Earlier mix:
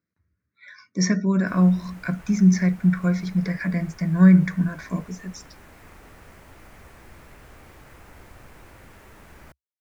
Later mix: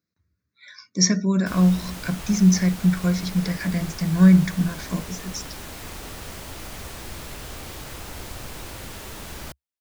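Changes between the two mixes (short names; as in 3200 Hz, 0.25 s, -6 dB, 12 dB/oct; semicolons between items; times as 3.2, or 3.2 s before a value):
background +10.0 dB; master: add resonant high shelf 2700 Hz +7.5 dB, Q 1.5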